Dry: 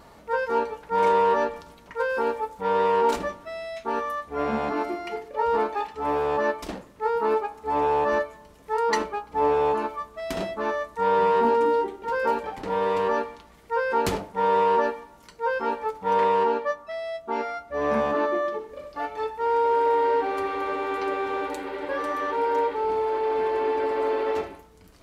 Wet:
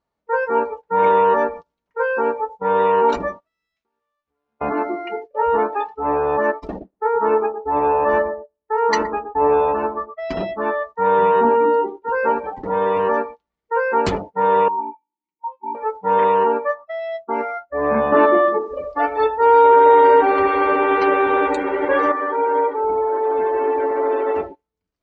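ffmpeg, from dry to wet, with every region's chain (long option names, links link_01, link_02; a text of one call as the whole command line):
ffmpeg -i in.wav -filter_complex "[0:a]asettb=1/sr,asplit=3[link_01][link_02][link_03];[link_01]atrim=end=3.404[link_04];[link_02]atrim=start=3.4:end=4.61,asetpts=PTS-STARTPTS,afade=type=in:duration=0.004:curve=qsin,afade=type=out:start_time=1.206:duration=0.004:curve=qsin,bandreject=frequency=660:width=9.7,acompressor=threshold=-42dB:ratio=8:attack=3.2:release=140:knee=1:detection=peak,aeval=exprs='sgn(val(0))*max(abs(val(0))-0.00178,0)':channel_layout=same[link_05];[link_03]atrim=start=4.606[link_06];[link_04][link_05]acrossfade=duration=0.004:curve1=hsin:curve2=qsin[link_07];[link_07][link_06]acrossfade=duration=0.004:curve1=qsin:curve2=hsin,asettb=1/sr,asplit=3[link_08][link_09][link_10];[link_08]atrim=end=6.524[link_11];[link_09]atrim=start=6.52:end=10.14,asetpts=PTS-STARTPTS,afade=type=in:duration=0.004:curve=qsin,afade=type=out:start_time=3.616:duration=0.004:curve=qsin,agate=range=-11dB:threshold=-38dB:ratio=16:release=100:detection=peak,asplit=2[link_12][link_13];[link_13]adelay=119,lowpass=frequency=1000:poles=1,volume=-6dB,asplit=2[link_14][link_15];[link_15]adelay=119,lowpass=frequency=1000:poles=1,volume=0.38,asplit=2[link_16][link_17];[link_17]adelay=119,lowpass=frequency=1000:poles=1,volume=0.38,asplit=2[link_18][link_19];[link_19]adelay=119,lowpass=frequency=1000:poles=1,volume=0.38,asplit=2[link_20][link_21];[link_21]adelay=119,lowpass=frequency=1000:poles=1,volume=0.38[link_22];[link_12][link_14][link_16][link_18][link_20][link_22]amix=inputs=6:normalize=0,atrim=end_sample=159642[link_23];[link_10]atrim=start=10.136[link_24];[link_11][link_23]acrossfade=duration=0.004:curve1=hsin:curve2=qsin[link_25];[link_25][link_24]acrossfade=duration=0.004:curve1=qsin:curve2=hsin,asettb=1/sr,asplit=3[link_26][link_27][link_28];[link_26]atrim=end=14.684[link_29];[link_27]atrim=start=14.68:end=15.75,asetpts=PTS-STARTPTS,afade=type=in:duration=0.004:curve=qsin,afade=type=out:start_time=1.066:duration=0.004:curve=qsin,asplit=3[link_30][link_31][link_32];[link_30]bandpass=frequency=300:width_type=q:width=8,volume=0dB[link_33];[link_31]bandpass=frequency=870:width_type=q:width=8,volume=-6dB[link_34];[link_32]bandpass=frequency=2240:width_type=q:width=8,volume=-9dB[link_35];[link_33][link_34][link_35]amix=inputs=3:normalize=0,aecho=1:1:5.5:0.7,atrim=end_sample=47187[link_36];[link_28]atrim=start=15.746[link_37];[link_29][link_36]acrossfade=duration=0.004:curve1=hsin:curve2=qsin[link_38];[link_38][link_37]acrossfade=duration=0.004:curve1=qsin:curve2=hsin,asettb=1/sr,asplit=3[link_39][link_40][link_41];[link_39]atrim=end=18.124[link_42];[link_40]atrim=start=18.12:end=22.12,asetpts=PTS-STARTPTS,afade=type=in:duration=0.004:curve=qsin,afade=type=out:start_time=3.996:duration=0.004:curve=qsin,aecho=1:1:76|152|228|304:0.158|0.0697|0.0307|0.0135,atrim=end_sample=176400,acontrast=52,acrusher=bits=7:mix=0:aa=0.5[link_43];[link_41]atrim=start=22.116[link_44];[link_42][link_43]acrossfade=duration=0.004:curve1=hsin:curve2=qsin[link_45];[link_45][link_44]acrossfade=duration=0.004:curve1=qsin:curve2=hsin,agate=range=-14dB:threshold=-37dB:ratio=16:detection=peak,afftdn=noise_reduction=22:noise_floor=-36,lowpass=frequency=6900:width=0.5412,lowpass=frequency=6900:width=1.3066,volume=5.5dB" out.wav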